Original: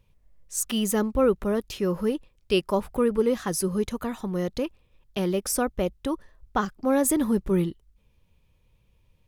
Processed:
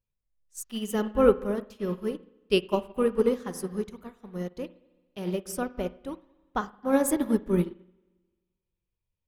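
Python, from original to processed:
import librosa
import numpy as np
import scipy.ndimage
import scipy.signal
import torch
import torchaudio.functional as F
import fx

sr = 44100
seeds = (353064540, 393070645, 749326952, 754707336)

y = fx.rev_spring(x, sr, rt60_s=1.5, pass_ms=(44, 56), chirp_ms=55, drr_db=5.5)
y = fx.upward_expand(y, sr, threshold_db=-35.0, expansion=2.5)
y = F.gain(torch.from_numpy(y), 3.0).numpy()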